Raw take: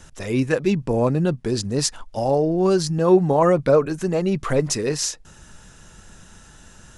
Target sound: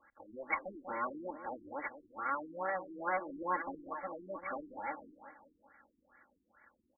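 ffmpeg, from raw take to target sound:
-filter_complex "[0:a]aeval=exprs='abs(val(0))':c=same,aderivative,aecho=1:1:3.6:0.98,asplit=2[s0][s1];[s1]adelay=191,lowpass=f=1900:p=1,volume=0.316,asplit=2[s2][s3];[s3]adelay=191,lowpass=f=1900:p=1,volume=0.54,asplit=2[s4][s5];[s5]adelay=191,lowpass=f=1900:p=1,volume=0.54,asplit=2[s6][s7];[s7]adelay=191,lowpass=f=1900:p=1,volume=0.54,asplit=2[s8][s9];[s9]adelay=191,lowpass=f=1900:p=1,volume=0.54,asplit=2[s10][s11];[s11]adelay=191,lowpass=f=1900:p=1,volume=0.54[s12];[s2][s4][s6][s8][s10][s12]amix=inputs=6:normalize=0[s13];[s0][s13]amix=inputs=2:normalize=0,afftfilt=real='re*lt(b*sr/1024,420*pow(2300/420,0.5+0.5*sin(2*PI*2.3*pts/sr)))':imag='im*lt(b*sr/1024,420*pow(2300/420,0.5+0.5*sin(2*PI*2.3*pts/sr)))':win_size=1024:overlap=0.75,volume=1.68"

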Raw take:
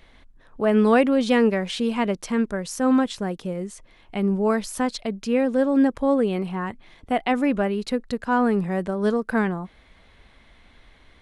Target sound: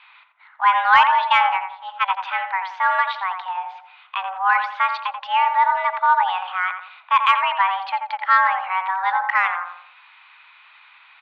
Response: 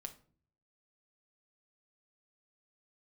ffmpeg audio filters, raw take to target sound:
-filter_complex "[0:a]asplit=3[s0][s1][s2];[s0]afade=t=out:st=1.23:d=0.02[s3];[s1]agate=range=0.0398:threshold=0.1:ratio=16:detection=peak,afade=t=in:st=1.23:d=0.02,afade=t=out:st=2.01:d=0.02[s4];[s2]afade=t=in:st=2.01:d=0.02[s5];[s3][s4][s5]amix=inputs=3:normalize=0,highpass=f=550:t=q:w=0.5412,highpass=f=550:t=q:w=1.307,lowpass=f=3100:t=q:w=0.5176,lowpass=f=3100:t=q:w=0.7071,lowpass=f=3100:t=q:w=1.932,afreqshift=370,asplit=2[s6][s7];[s7]adelay=86,lowpass=f=1300:p=1,volume=0.596,asplit=2[s8][s9];[s9]adelay=86,lowpass=f=1300:p=1,volume=0.5,asplit=2[s10][s11];[s11]adelay=86,lowpass=f=1300:p=1,volume=0.5,asplit=2[s12][s13];[s13]adelay=86,lowpass=f=1300:p=1,volume=0.5,asplit=2[s14][s15];[s15]adelay=86,lowpass=f=1300:p=1,volume=0.5,asplit=2[s16][s17];[s17]adelay=86,lowpass=f=1300:p=1,volume=0.5[s18];[s8][s10][s12][s14][s16][s18]amix=inputs=6:normalize=0[s19];[s6][s19]amix=inputs=2:normalize=0,acontrast=71,volume=1.26"

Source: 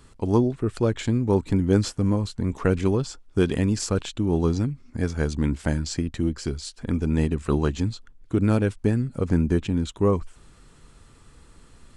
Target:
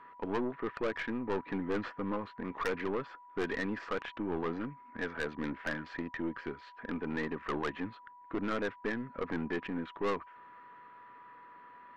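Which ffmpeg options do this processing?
-af "highpass=370,equalizer=f=380:t=q:w=4:g=-3,equalizer=f=1200:t=q:w=4:g=6,equalizer=f=1800:t=q:w=4:g=9,lowpass=f=2400:w=0.5412,lowpass=f=2400:w=1.3066,aeval=exprs='val(0)+0.00316*sin(2*PI*980*n/s)':c=same,aeval=exprs='(tanh(22.4*val(0)+0.35)-tanh(0.35))/22.4':c=same,volume=0.891"

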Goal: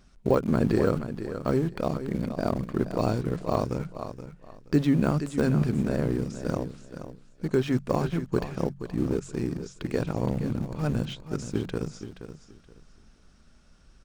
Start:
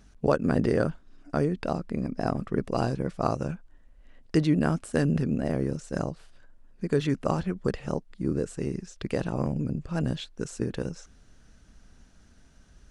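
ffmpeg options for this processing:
-filter_complex "[0:a]asplit=2[s0][s1];[s1]aeval=exprs='val(0)*gte(abs(val(0)),0.0355)':c=same,volume=0.316[s2];[s0][s2]amix=inputs=2:normalize=0,bandreject=f=50:t=h:w=6,bandreject=f=100:t=h:w=6,bandreject=f=150:t=h:w=6,bandreject=f=200:t=h:w=6,aecho=1:1:436|872|1308:0.282|0.062|0.0136,deesser=0.85,asetrate=40517,aresample=44100,volume=0.891"

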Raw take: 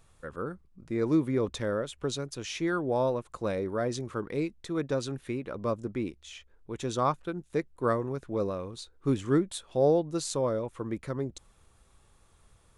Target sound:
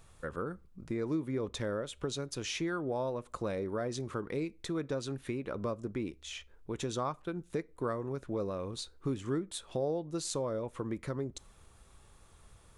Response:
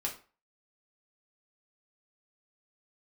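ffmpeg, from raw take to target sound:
-filter_complex "[0:a]acompressor=threshold=0.0141:ratio=3,asplit=2[s0][s1];[1:a]atrim=start_sample=2205[s2];[s1][s2]afir=irnorm=-1:irlink=0,volume=0.112[s3];[s0][s3]amix=inputs=2:normalize=0,volume=1.26"

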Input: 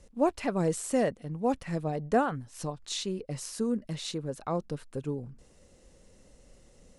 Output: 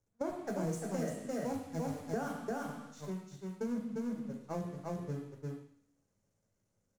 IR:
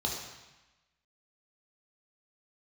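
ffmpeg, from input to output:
-filter_complex "[0:a]aeval=exprs='val(0)+0.5*0.0398*sgn(val(0))':c=same,agate=range=0.00316:threshold=0.0562:ratio=16:detection=peak,asettb=1/sr,asplit=3[s0][s1][s2];[s0]atrim=end=0.474[s3];[s1]atrim=start=0.47:end=2.74,asetpts=PTS-STARTPTS,afade=t=in:d=0.004:c=qsin,afade=t=out:st=2.266:d=0.004:c=qsin,highshelf=f=4100:g=8[s4];[s2]atrim=start=2.736[s5];[s3][s4]acrossfade=d=0.004:c1=hsin:c2=qsin[s6];[s6][s5]acrossfade=d=0.004:c1=qsin:c2=hsin,aecho=1:1:347:0.631[s7];[1:a]atrim=start_sample=2205,asetrate=74970,aresample=44100[s8];[s7][s8]afir=irnorm=-1:irlink=0,acompressor=threshold=0.0158:ratio=4,lowshelf=f=160:g=9.5,volume=0.75"

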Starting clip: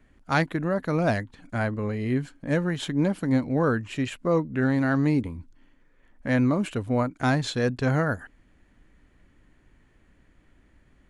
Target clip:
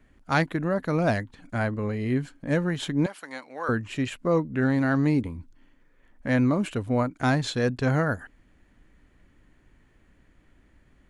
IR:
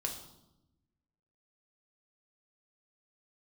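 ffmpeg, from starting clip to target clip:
-filter_complex "[0:a]asettb=1/sr,asplit=3[s0][s1][s2];[s0]atrim=end=3.064[s3];[s1]atrim=start=3.06:end=3.69,asetpts=PTS-STARTPTS,afade=t=in:d=0.004:c=qsin,afade=t=out:st=0.626:d=0.004:c=qsin,highpass=930[s4];[s2]atrim=start=3.686[s5];[s3][s4]acrossfade=d=0.004:c1=hsin:c2=qsin[s6];[s6][s5]acrossfade=d=0.004:c1=qsin:c2=hsin"

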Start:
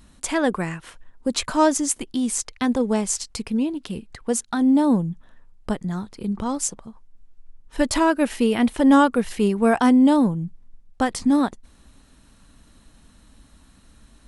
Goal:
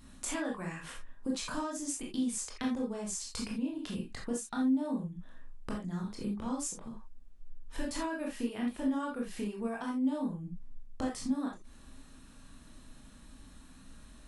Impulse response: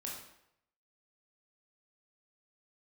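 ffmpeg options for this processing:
-filter_complex "[0:a]acompressor=threshold=0.0282:ratio=12[s0];[1:a]atrim=start_sample=2205,atrim=end_sample=3969[s1];[s0][s1]afir=irnorm=-1:irlink=0"

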